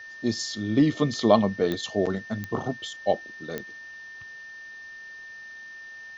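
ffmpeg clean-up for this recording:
ffmpeg -i in.wav -af "adeclick=threshold=4,bandreject=frequency=1800:width=30,afftdn=noise_reduction=28:noise_floor=-43" out.wav

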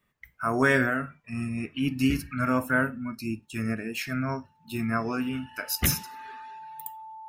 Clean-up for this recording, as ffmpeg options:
ffmpeg -i in.wav -af "bandreject=frequency=880:width=30" out.wav

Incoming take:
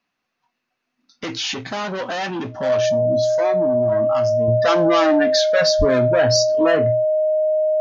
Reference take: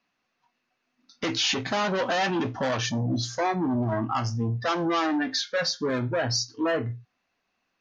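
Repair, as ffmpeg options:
ffmpeg -i in.wav -filter_complex "[0:a]bandreject=frequency=620:width=30,asplit=3[link_01][link_02][link_03];[link_01]afade=type=out:start_time=5.78:duration=0.02[link_04];[link_02]highpass=frequency=140:width=0.5412,highpass=frequency=140:width=1.3066,afade=type=in:start_time=5.78:duration=0.02,afade=type=out:start_time=5.9:duration=0.02[link_05];[link_03]afade=type=in:start_time=5.9:duration=0.02[link_06];[link_04][link_05][link_06]amix=inputs=3:normalize=0,asetnsamples=nb_out_samples=441:pad=0,asendcmd='4.48 volume volume -7dB',volume=0dB" out.wav

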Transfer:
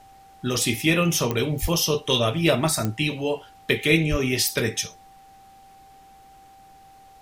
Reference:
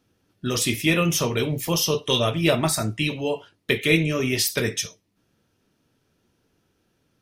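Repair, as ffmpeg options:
ffmpeg -i in.wav -filter_complex "[0:a]adeclick=threshold=4,bandreject=frequency=780:width=30,asplit=3[link_01][link_02][link_03];[link_01]afade=type=out:start_time=1.61:duration=0.02[link_04];[link_02]highpass=frequency=140:width=0.5412,highpass=frequency=140:width=1.3066,afade=type=in:start_time=1.61:duration=0.02,afade=type=out:start_time=1.73:duration=0.02[link_05];[link_03]afade=type=in:start_time=1.73:duration=0.02[link_06];[link_04][link_05][link_06]amix=inputs=3:normalize=0,asplit=3[link_07][link_08][link_09];[link_07]afade=type=out:start_time=4.1:duration=0.02[link_10];[link_08]highpass=frequency=140:width=0.5412,highpass=frequency=140:width=1.3066,afade=type=in:start_time=4.1:duration=0.02,afade=type=out:start_time=4.22:duration=0.02[link_11];[link_09]afade=type=in:start_time=4.22:duration=0.02[link_12];[link_10][link_11][link_12]amix=inputs=3:normalize=0,agate=range=-21dB:threshold=-42dB" out.wav

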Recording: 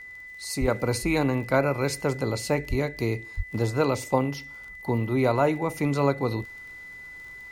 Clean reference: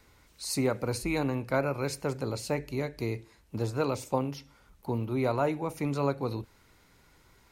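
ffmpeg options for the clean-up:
ffmpeg -i in.wav -filter_complex "[0:a]adeclick=threshold=4,bandreject=frequency=2000:width=30,asplit=3[link_01][link_02][link_03];[link_01]afade=type=out:start_time=0.6:duration=0.02[link_04];[link_02]highpass=frequency=140:width=0.5412,highpass=frequency=140:width=1.3066,afade=type=in:start_time=0.6:duration=0.02,afade=type=out:start_time=0.72:duration=0.02[link_05];[link_03]afade=type=in:start_time=0.72:duration=0.02[link_06];[link_04][link_05][link_06]amix=inputs=3:normalize=0,asplit=3[link_07][link_08][link_09];[link_07]afade=type=out:start_time=2.69:duration=0.02[link_10];[link_08]highpass=frequency=140:width=0.5412,highpass=frequency=140:width=1.3066,afade=type=in:start_time=2.69:duration=0.02,afade=type=out:start_time=2.81:duration=0.02[link_11];[link_09]afade=type=in:start_time=2.81:duration=0.02[link_12];[link_10][link_11][link_12]amix=inputs=3:normalize=0,asplit=3[link_13][link_14][link_15];[link_13]afade=type=out:start_time=3.36:duration=0.02[link_16];[link_14]highpass=frequency=140:width=0.5412,highpass=frequency=140:width=1.3066,afade=type=in:start_time=3.36:duration=0.02,afade=type=out:start_time=3.48:duration=0.02[link_17];[link_15]afade=type=in:start_time=3.48:duration=0.02[link_18];[link_16][link_17][link_18]amix=inputs=3:normalize=0,asetnsamples=nb_out_samples=441:pad=0,asendcmd='0.68 volume volume -5.5dB',volume=0dB" out.wav

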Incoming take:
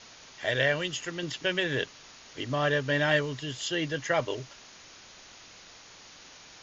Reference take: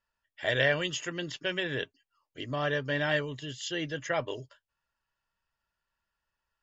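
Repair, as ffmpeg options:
ffmpeg -i in.wav -af "afwtdn=0.005,asetnsamples=nb_out_samples=441:pad=0,asendcmd='1.23 volume volume -3.5dB',volume=0dB" out.wav

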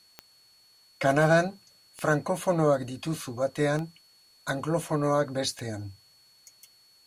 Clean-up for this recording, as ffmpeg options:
ffmpeg -i in.wav -af "adeclick=threshold=4,bandreject=frequency=4400:width=30,agate=range=-21dB:threshold=-52dB" out.wav

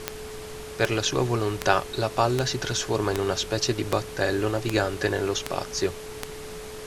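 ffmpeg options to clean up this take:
ffmpeg -i in.wav -af "adeclick=threshold=4,bandreject=frequency=430:width=30,afftdn=noise_reduction=30:noise_floor=-38" out.wav

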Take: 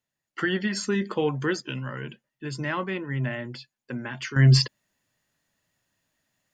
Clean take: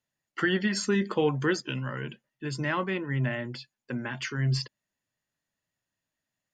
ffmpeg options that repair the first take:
ffmpeg -i in.wav -af "asetnsamples=nb_out_samples=441:pad=0,asendcmd='4.36 volume volume -10.5dB',volume=0dB" out.wav

